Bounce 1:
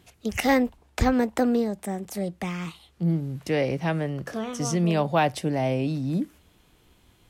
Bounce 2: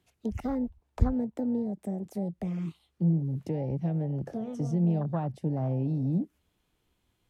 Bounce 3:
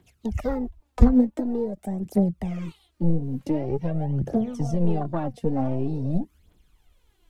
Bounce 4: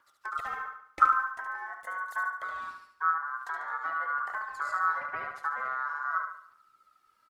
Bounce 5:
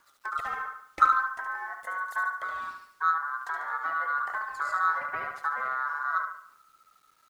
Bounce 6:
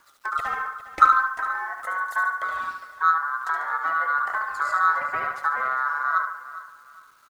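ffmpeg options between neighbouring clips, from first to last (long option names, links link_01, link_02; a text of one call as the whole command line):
ffmpeg -i in.wav -filter_complex "[0:a]acrossover=split=190[link_01][link_02];[link_02]acompressor=threshold=-35dB:ratio=6[link_03];[link_01][link_03]amix=inputs=2:normalize=0,afwtdn=0.0224,volume=1.5dB" out.wav
ffmpeg -i in.wav -af "aeval=exprs='0.355*(cos(1*acos(clip(val(0)/0.355,-1,1)))-cos(1*PI/2))+0.0141*(cos(4*acos(clip(val(0)/0.355,-1,1)))-cos(4*PI/2))+0.0141*(cos(7*acos(clip(val(0)/0.355,-1,1)))-cos(7*PI/2))':channel_layout=same,aphaser=in_gain=1:out_gain=1:delay=4.4:decay=0.66:speed=0.46:type=triangular,asubboost=boost=2.5:cutoff=66,volume=7.5dB" out.wav
ffmpeg -i in.wav -filter_complex "[0:a]acrossover=split=180|3000[link_01][link_02][link_03];[link_02]acompressor=threshold=-32dB:ratio=6[link_04];[link_01][link_04][link_03]amix=inputs=3:normalize=0,aeval=exprs='val(0)*sin(2*PI*1300*n/s)':channel_layout=same,aecho=1:1:72|144|216|288|360:0.501|0.216|0.0927|0.0398|0.0171,volume=-4dB" out.wav
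ffmpeg -i in.wav -filter_complex "[0:a]asplit=2[link_01][link_02];[link_02]asoftclip=type=tanh:threshold=-23dB,volume=-9dB[link_03];[link_01][link_03]amix=inputs=2:normalize=0,acrusher=bits=10:mix=0:aa=0.000001" out.wav
ffmpeg -i in.wav -af "aecho=1:1:407|814|1221:0.168|0.0504|0.0151,volume=5.5dB" out.wav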